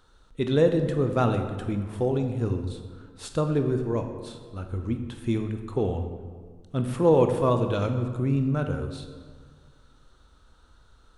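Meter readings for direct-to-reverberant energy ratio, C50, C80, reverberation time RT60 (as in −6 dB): 6.0 dB, 7.5 dB, 9.0 dB, 1.7 s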